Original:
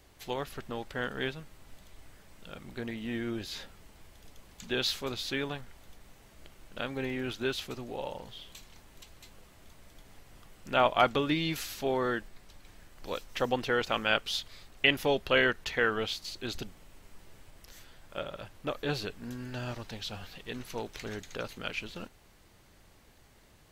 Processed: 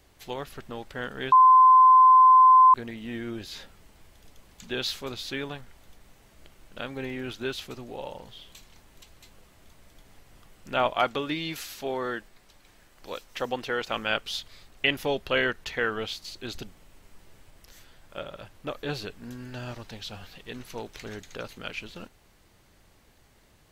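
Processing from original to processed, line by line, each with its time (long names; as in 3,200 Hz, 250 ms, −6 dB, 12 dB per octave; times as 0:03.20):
0:01.32–0:02.74: beep over 1,030 Hz −11.5 dBFS
0:10.93–0:13.91: low-shelf EQ 200 Hz −7 dB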